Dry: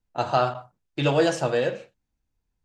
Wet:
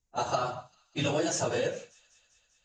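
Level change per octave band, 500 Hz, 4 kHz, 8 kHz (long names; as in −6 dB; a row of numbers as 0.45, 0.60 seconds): −7.5, −3.5, +5.5 decibels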